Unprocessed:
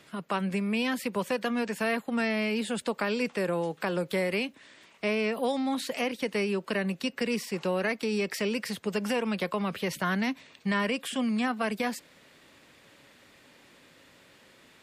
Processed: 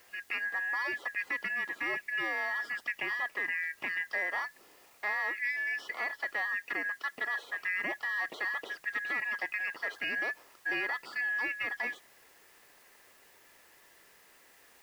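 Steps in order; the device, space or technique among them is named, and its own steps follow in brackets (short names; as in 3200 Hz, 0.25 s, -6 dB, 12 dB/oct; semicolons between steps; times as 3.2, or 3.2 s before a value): split-band scrambled radio (four-band scrambler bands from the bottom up 2143; BPF 340–3100 Hz; white noise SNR 27 dB); 6.41–7.15 HPF 110 Hz; gain -4.5 dB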